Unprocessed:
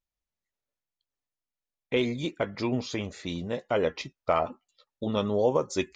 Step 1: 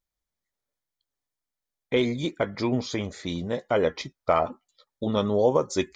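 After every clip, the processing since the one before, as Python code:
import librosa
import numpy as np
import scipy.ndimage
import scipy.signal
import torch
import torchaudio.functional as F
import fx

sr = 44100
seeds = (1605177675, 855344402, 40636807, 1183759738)

y = fx.notch(x, sr, hz=2700.0, q=5.6)
y = y * librosa.db_to_amplitude(3.0)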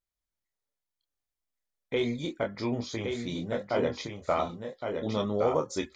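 y = fx.chorus_voices(x, sr, voices=4, hz=0.36, base_ms=27, depth_ms=2.2, mix_pct=35)
y = y + 10.0 ** (-5.5 / 20.0) * np.pad(y, (int(1115 * sr / 1000.0), 0))[:len(y)]
y = y * librosa.db_to_amplitude(-2.5)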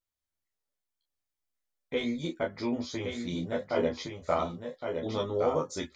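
y = fx.doubler(x, sr, ms=12.0, db=-2.5)
y = y * librosa.db_to_amplitude(-3.0)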